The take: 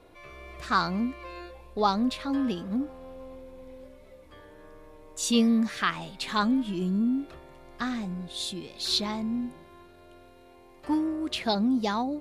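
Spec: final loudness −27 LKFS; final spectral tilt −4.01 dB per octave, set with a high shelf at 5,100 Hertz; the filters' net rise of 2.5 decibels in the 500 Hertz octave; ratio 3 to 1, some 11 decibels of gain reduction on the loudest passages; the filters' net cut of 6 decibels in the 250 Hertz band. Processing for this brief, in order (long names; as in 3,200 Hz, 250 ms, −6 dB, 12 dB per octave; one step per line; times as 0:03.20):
parametric band 250 Hz −8 dB
parametric band 500 Hz +5.5 dB
high-shelf EQ 5,100 Hz −6.5 dB
downward compressor 3 to 1, threshold −33 dBFS
level +10 dB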